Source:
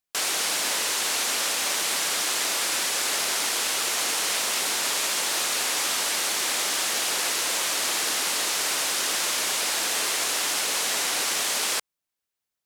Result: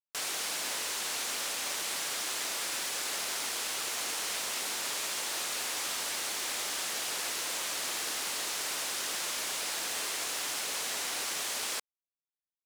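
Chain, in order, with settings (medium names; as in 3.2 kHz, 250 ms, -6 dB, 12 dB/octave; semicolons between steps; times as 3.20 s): bit crusher 6-bit; trim -9 dB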